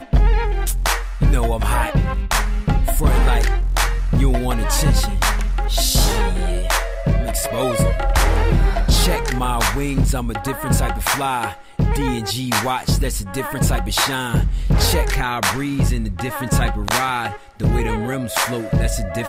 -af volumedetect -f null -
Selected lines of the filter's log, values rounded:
mean_volume: -17.5 dB
max_volume: -4.0 dB